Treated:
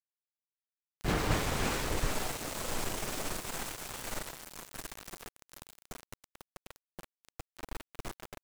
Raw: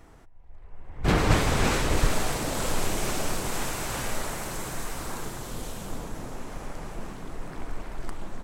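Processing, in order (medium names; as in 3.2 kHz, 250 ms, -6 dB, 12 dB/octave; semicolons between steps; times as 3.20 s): bass shelf 180 Hz -3 dB; small samples zeroed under -27.5 dBFS; trim -7 dB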